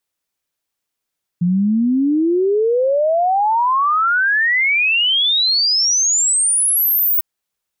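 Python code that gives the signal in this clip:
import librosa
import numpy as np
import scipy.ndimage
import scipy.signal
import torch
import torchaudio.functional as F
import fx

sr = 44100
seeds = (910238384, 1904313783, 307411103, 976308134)

y = fx.ess(sr, length_s=5.8, from_hz=170.0, to_hz=16000.0, level_db=-12.5)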